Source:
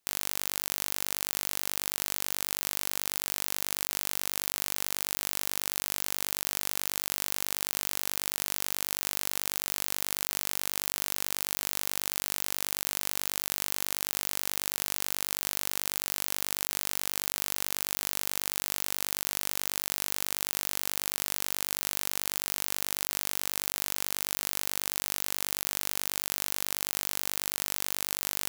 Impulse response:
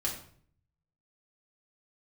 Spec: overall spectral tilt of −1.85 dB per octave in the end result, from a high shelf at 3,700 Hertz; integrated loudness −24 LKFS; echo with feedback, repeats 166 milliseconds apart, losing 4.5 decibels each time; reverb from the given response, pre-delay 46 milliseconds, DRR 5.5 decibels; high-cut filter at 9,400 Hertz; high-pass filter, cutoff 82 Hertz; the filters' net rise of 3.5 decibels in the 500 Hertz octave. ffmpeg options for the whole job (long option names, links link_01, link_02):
-filter_complex "[0:a]highpass=82,lowpass=9400,equalizer=frequency=500:width_type=o:gain=4.5,highshelf=frequency=3700:gain=-5,aecho=1:1:166|332|498|664|830|996|1162|1328|1494:0.596|0.357|0.214|0.129|0.0772|0.0463|0.0278|0.0167|0.01,asplit=2[link_01][link_02];[1:a]atrim=start_sample=2205,adelay=46[link_03];[link_02][link_03]afir=irnorm=-1:irlink=0,volume=-9.5dB[link_04];[link_01][link_04]amix=inputs=2:normalize=0,volume=9.5dB"